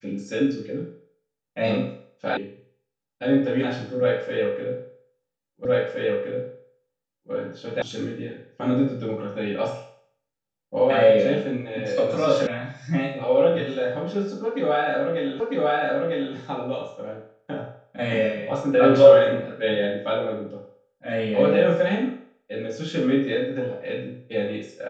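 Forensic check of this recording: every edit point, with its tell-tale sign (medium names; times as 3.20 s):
2.37 s: sound stops dead
5.65 s: repeat of the last 1.67 s
7.82 s: sound stops dead
12.47 s: sound stops dead
15.40 s: repeat of the last 0.95 s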